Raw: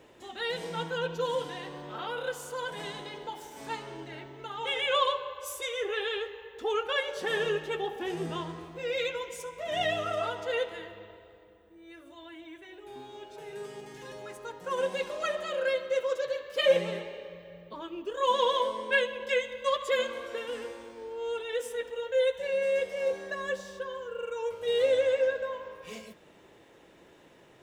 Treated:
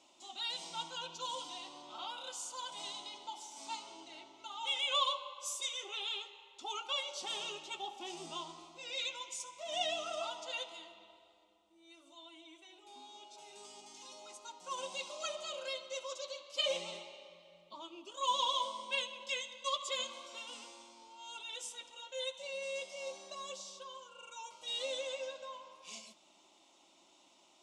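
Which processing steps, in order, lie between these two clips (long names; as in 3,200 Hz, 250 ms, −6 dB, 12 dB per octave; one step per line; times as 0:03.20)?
low-pass filter 7,400 Hz 24 dB per octave
spectral tilt +4 dB per octave
phaser with its sweep stopped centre 460 Hz, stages 6
level −4.5 dB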